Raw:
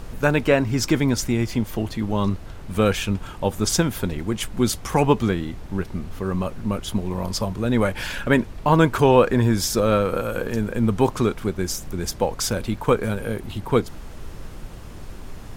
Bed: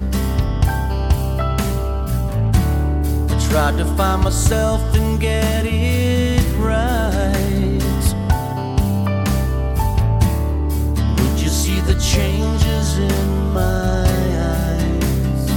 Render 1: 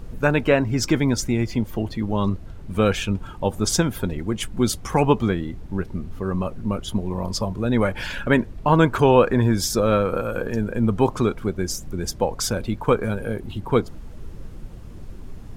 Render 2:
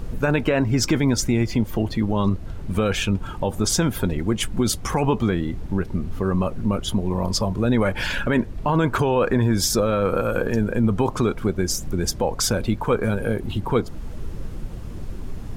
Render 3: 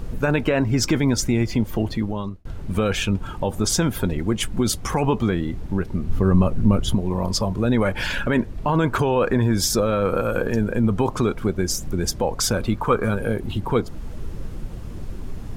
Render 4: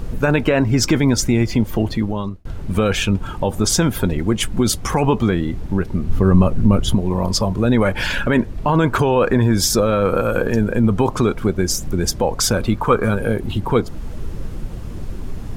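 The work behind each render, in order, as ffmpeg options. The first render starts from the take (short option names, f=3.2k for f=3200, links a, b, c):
-af "afftdn=nr=9:nf=-38"
-filter_complex "[0:a]asplit=2[a][b];[b]acompressor=threshold=-27dB:ratio=6,volume=-0.5dB[c];[a][c]amix=inputs=2:normalize=0,alimiter=limit=-10.5dB:level=0:latency=1:release=19"
-filter_complex "[0:a]asettb=1/sr,asplit=3[a][b][c];[a]atrim=end=6.094[d];[b]atrim=start=6.09:end=6.95,asetpts=PTS-STARTPTS,afade=t=in:d=0.004:c=qsin,afade=t=out:st=0.856:d=0.004:c=qsin,lowshelf=f=240:g=8.5[e];[c]atrim=start=6.946[f];[d][e]acrossfade=d=0.004:c1=hsin:c2=qsin[g];[g][f]acrossfade=d=0.004:c1=qsin:c2=hsin,asettb=1/sr,asplit=3[h][i][j];[h]atrim=end=12.544[k];[i]atrim=start=12.54:end=13.18,asetpts=PTS-STARTPTS,afade=t=in:d=0.004:c=qsin,afade=t=out:st=0.636:d=0.004:c=qsin,equalizer=f=1.2k:t=o:w=0.38:g=7.5[l];[j]atrim=start=13.176[m];[k][l]acrossfade=d=0.004:c1=hsin:c2=qsin[n];[n][m]acrossfade=d=0.004:c1=qsin:c2=hsin,asplit=2[o][p];[o]atrim=end=2.45,asetpts=PTS-STARTPTS,afade=t=out:st=1.91:d=0.54[q];[p]atrim=start=2.45,asetpts=PTS-STARTPTS,afade=t=in:d=0.004:c=hsin[r];[q][r]concat=n=2:v=0:a=1"
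-af "volume=4dB,alimiter=limit=-3dB:level=0:latency=1"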